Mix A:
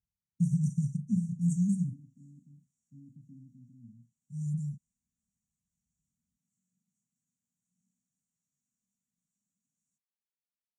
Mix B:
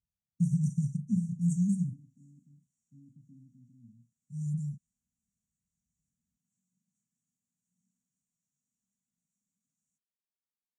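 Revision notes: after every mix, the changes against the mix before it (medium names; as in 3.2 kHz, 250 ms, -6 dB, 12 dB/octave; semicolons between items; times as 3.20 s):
second voice -3.5 dB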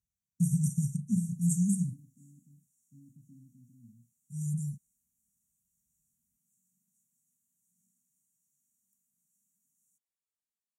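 master: remove distance through air 110 m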